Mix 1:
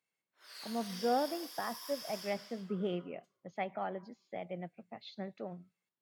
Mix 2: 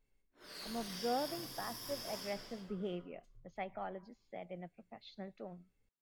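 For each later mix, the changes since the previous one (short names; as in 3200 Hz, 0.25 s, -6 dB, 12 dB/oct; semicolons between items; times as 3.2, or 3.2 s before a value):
speech -5.0 dB; background: remove HPF 950 Hz 12 dB/oct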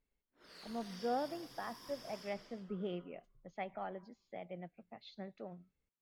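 background: add high shelf 8100 Hz -12 dB; reverb: off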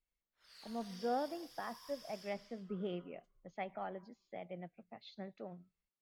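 background: add passive tone stack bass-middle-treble 10-0-10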